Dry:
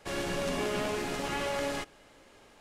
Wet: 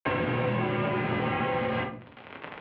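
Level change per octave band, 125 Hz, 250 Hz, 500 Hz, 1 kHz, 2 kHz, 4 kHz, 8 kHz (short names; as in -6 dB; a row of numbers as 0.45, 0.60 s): +11.5 dB, +6.0 dB, +3.0 dB, +6.5 dB, +5.0 dB, -2.5 dB, under -35 dB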